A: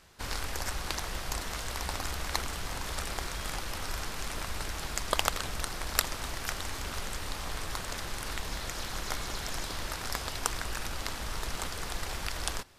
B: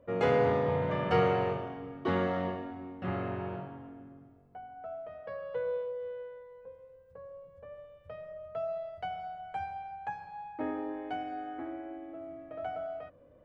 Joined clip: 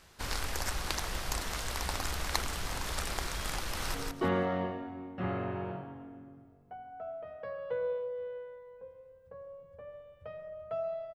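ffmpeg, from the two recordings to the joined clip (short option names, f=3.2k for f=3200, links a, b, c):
-filter_complex "[0:a]apad=whole_dur=11.14,atrim=end=11.14,atrim=end=3.942[a];[1:a]atrim=start=1.778:end=8.98[b];[a][b]acrossfade=d=0.004:c1=hsin:c2=hsin,asplit=2[c][d];[d]afade=t=in:st=3.6:d=0.01,afade=t=out:st=3.94:d=0.01,aecho=0:1:170|340|510:0.749894|0.149979|0.0299958[e];[c][e]amix=inputs=2:normalize=0"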